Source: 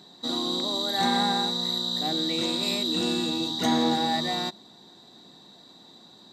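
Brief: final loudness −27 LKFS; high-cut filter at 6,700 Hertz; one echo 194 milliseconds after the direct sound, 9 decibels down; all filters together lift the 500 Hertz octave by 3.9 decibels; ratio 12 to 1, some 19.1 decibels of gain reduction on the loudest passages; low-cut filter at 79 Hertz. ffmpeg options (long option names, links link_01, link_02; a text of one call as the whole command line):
ffmpeg -i in.wav -af "highpass=79,lowpass=6700,equalizer=frequency=500:width_type=o:gain=5,acompressor=threshold=-38dB:ratio=12,aecho=1:1:194:0.355,volume=13.5dB" out.wav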